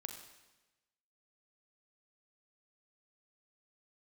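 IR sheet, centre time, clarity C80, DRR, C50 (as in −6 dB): 27 ms, 8.5 dB, 4.5 dB, 6.5 dB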